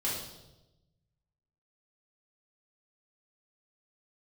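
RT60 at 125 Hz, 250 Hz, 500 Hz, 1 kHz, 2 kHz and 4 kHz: 1.7 s, 1.2 s, 1.1 s, 0.90 s, 0.75 s, 0.90 s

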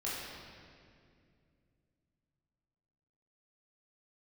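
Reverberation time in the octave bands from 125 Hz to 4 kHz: 3.9 s, 3.4 s, 2.6 s, 2.0 s, 2.0 s, 1.7 s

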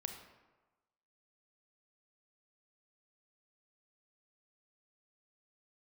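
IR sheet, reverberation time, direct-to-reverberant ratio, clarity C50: 1.2 s, 5.0 dB, 6.5 dB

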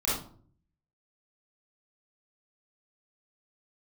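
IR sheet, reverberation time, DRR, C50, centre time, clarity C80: 0.50 s, -9.5 dB, -0.5 dB, 54 ms, 7.5 dB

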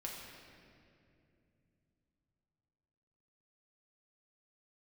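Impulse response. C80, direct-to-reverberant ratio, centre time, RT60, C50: 2.5 dB, -3.0 dB, 101 ms, 2.6 s, 1.0 dB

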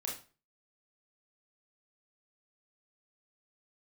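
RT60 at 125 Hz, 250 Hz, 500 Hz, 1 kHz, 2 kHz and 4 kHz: 0.45 s, 0.40 s, 0.35 s, 0.35 s, 0.35 s, 0.30 s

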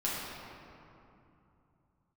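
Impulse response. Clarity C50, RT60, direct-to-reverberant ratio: -2.5 dB, 2.8 s, -7.5 dB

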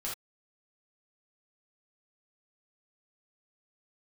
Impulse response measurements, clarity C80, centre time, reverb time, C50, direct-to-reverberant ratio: 12.5 dB, 33 ms, no single decay rate, 3.0 dB, -5.5 dB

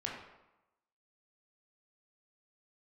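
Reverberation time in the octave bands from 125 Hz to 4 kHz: 0.80 s, 0.95 s, 0.90 s, 1.0 s, 0.80 s, 0.65 s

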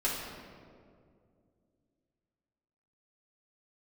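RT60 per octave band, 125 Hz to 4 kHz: 3.1 s, 3.1 s, 2.6 s, 1.9 s, 1.4 s, 1.1 s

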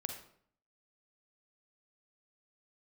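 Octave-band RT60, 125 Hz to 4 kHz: 0.75 s, 0.70 s, 0.60 s, 0.60 s, 0.50 s, 0.45 s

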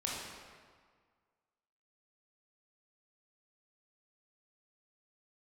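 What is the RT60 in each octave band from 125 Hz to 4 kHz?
1.7 s, 1.7 s, 1.7 s, 1.8 s, 1.5 s, 1.2 s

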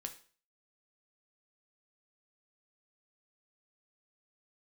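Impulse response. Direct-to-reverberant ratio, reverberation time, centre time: 5.0 dB, 0.40 s, 9 ms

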